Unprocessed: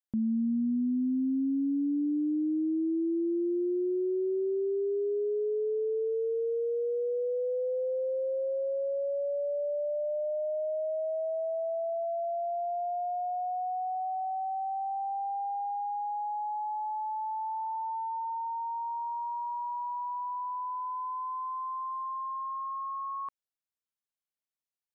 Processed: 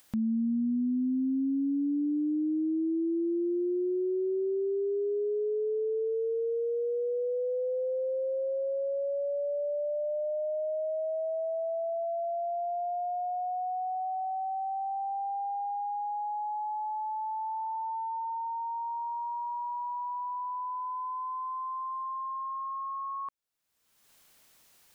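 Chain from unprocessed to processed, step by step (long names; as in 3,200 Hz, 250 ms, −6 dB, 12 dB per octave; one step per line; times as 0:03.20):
upward compression, threshold −37 dBFS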